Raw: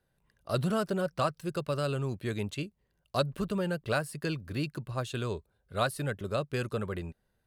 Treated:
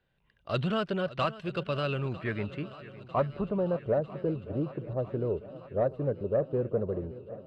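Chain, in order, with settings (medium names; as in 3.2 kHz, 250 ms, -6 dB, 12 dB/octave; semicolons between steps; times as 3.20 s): low-pass sweep 3 kHz -> 540 Hz, 1.76–3.98 s; saturation -16 dBFS, distortion -24 dB; shuffle delay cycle 949 ms, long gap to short 1.5:1, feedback 62%, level -17.5 dB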